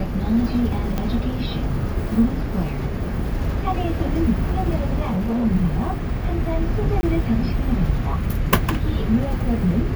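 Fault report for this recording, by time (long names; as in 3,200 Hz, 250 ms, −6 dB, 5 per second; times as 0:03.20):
0:00.98: click −11 dBFS
0:05.04–0:05.46: clipping −19 dBFS
0:07.01–0:07.03: drop-out 20 ms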